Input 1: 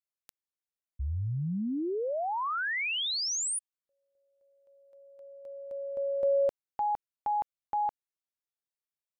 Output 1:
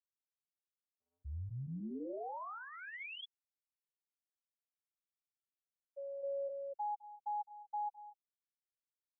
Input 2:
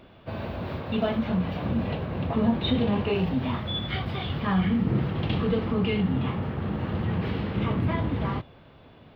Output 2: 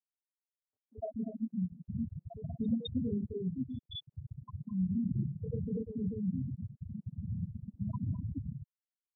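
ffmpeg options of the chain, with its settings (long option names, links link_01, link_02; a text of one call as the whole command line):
ffmpeg -i in.wav -filter_complex "[0:a]afftfilt=real='re*gte(hypot(re,im),0.316)':imag='im*gte(hypot(re,im),0.316)':win_size=1024:overlap=0.75,acrossover=split=460|1500[link_01][link_02][link_03];[link_03]adelay=210[link_04];[link_01]adelay=240[link_05];[link_05][link_02][link_04]amix=inputs=3:normalize=0,volume=-7.5dB" out.wav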